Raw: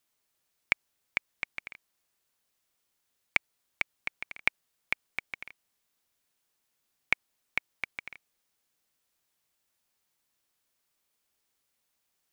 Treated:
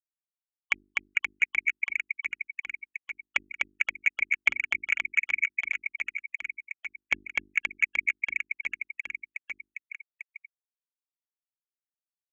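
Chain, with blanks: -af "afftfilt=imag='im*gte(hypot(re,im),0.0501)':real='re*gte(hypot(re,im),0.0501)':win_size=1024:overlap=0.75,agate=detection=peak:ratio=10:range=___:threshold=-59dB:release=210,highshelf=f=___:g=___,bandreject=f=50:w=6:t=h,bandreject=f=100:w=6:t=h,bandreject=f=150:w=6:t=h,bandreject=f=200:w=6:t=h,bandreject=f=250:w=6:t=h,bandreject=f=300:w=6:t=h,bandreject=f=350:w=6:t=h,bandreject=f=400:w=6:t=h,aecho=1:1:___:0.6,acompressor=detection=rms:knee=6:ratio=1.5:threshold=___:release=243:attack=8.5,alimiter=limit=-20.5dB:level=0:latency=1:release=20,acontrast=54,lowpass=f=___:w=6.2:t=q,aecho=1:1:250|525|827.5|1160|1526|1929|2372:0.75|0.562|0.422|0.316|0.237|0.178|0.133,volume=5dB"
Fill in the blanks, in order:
-7dB, 4.6k, 10.5, 3.6, -31dB, 6.9k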